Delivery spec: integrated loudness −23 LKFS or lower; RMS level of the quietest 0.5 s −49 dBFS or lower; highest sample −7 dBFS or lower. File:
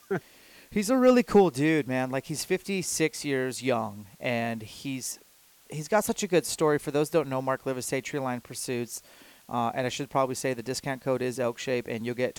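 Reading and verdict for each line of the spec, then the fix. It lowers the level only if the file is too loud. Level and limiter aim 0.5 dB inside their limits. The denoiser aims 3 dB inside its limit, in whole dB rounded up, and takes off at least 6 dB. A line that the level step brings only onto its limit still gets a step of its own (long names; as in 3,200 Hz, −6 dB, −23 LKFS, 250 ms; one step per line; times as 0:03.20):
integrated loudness −28.0 LKFS: in spec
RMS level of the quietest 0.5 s −58 dBFS: in spec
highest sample −10.0 dBFS: in spec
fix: no processing needed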